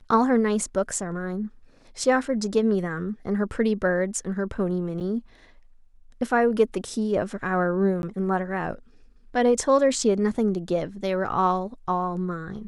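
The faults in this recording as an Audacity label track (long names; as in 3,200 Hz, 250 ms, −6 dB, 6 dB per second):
5.000000	5.010000	drop-out 7.4 ms
8.020000	8.030000	drop-out 11 ms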